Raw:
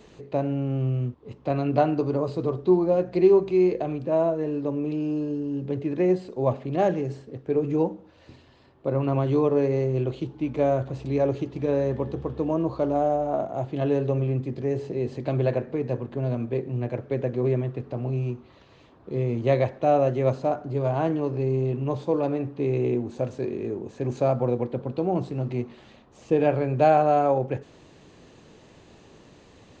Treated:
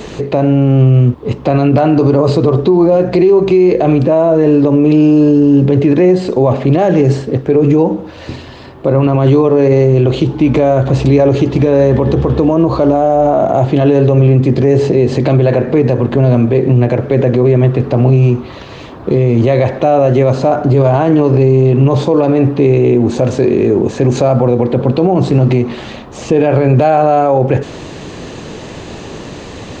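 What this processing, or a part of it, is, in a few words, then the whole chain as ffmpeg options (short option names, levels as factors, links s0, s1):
loud club master: -af "acompressor=threshold=0.0562:ratio=2.5,asoftclip=type=hard:threshold=0.168,alimiter=level_in=17.8:limit=0.891:release=50:level=0:latency=1,volume=0.891"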